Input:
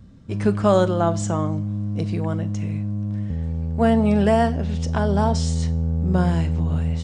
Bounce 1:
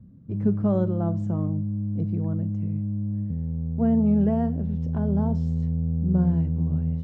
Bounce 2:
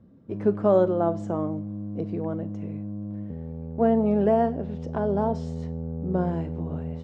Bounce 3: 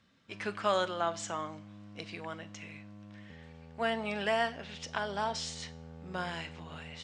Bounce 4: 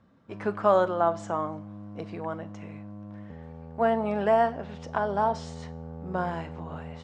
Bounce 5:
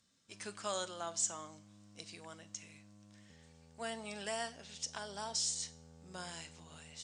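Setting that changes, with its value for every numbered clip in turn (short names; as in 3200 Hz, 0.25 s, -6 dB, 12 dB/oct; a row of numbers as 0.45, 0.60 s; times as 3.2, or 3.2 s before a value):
band-pass, frequency: 160, 410, 2600, 1000, 7600 Hz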